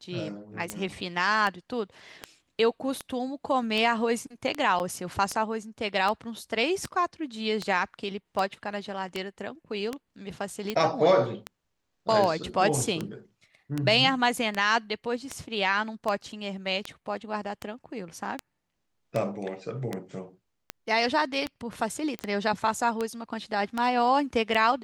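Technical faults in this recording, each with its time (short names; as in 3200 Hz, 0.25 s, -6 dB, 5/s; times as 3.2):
tick 78 rpm -15 dBFS
4.79–4.8 gap 9.1 ms
22.19 pop -19 dBFS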